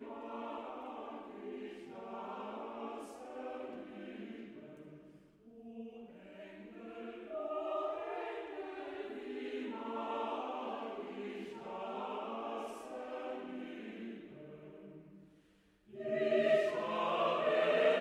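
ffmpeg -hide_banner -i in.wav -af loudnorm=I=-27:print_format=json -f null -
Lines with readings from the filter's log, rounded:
"input_i" : "-37.7",
"input_tp" : "-18.6",
"input_lra" : "14.5",
"input_thresh" : "-48.8",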